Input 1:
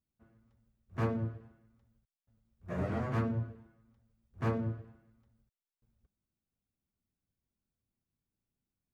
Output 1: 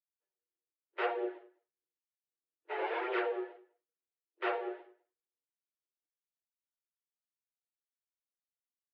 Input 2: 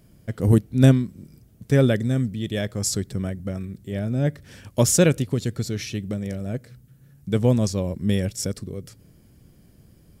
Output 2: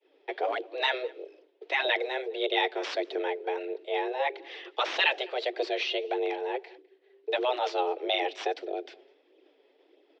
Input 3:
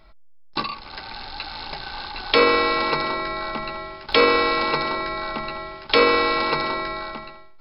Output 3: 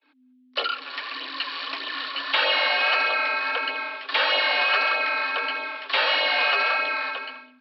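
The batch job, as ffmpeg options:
-filter_complex "[0:a]aemphasis=mode=production:type=75fm,agate=range=-33dB:threshold=-43dB:ratio=3:detection=peak,afftfilt=real='re*lt(hypot(re,im),0.501)':imag='im*lt(hypot(re,im),0.501)':win_size=1024:overlap=0.75,acrossover=split=1400[a][b];[b]acontrast=30[c];[a][c]amix=inputs=2:normalize=0,flanger=delay=0.3:depth=6.7:regen=23:speed=1.6:shape=sinusoidal,asoftclip=type=tanh:threshold=-16dB,afreqshift=320,asplit=2[d][e];[e]adelay=204.1,volume=-24dB,highshelf=f=4k:g=-4.59[f];[d][f]amix=inputs=2:normalize=0,highpass=f=470:t=q:w=0.5412,highpass=f=470:t=q:w=1.307,lowpass=f=3.6k:t=q:w=0.5176,lowpass=f=3.6k:t=q:w=0.7071,lowpass=f=3.6k:t=q:w=1.932,afreqshift=-67,volume=4dB"

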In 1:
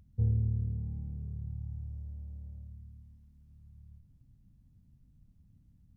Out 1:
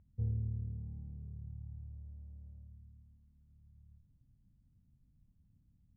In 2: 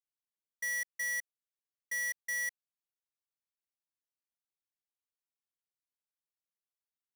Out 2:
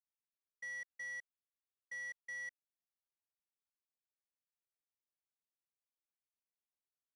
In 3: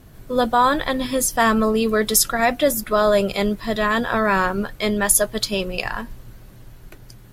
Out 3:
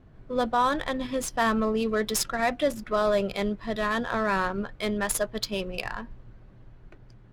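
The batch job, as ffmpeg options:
-af "adynamicsmooth=sensitivity=2.5:basefreq=2.5k,volume=-7dB"

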